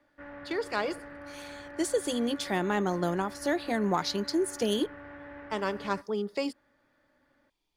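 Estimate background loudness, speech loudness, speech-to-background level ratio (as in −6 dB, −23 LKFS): −45.0 LKFS, −31.0 LKFS, 14.0 dB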